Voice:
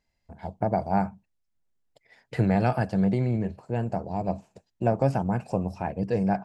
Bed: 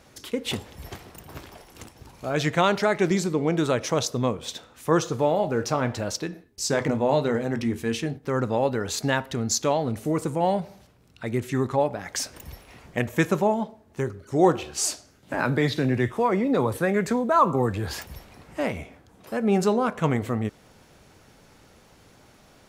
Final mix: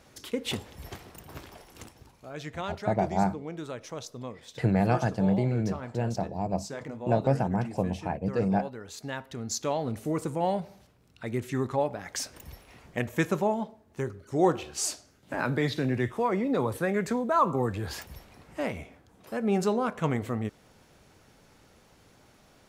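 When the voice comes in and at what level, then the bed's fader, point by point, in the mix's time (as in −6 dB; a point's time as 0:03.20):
2.25 s, −1.5 dB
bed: 0:01.91 −3 dB
0:02.29 −14.5 dB
0:08.87 −14.5 dB
0:09.87 −4.5 dB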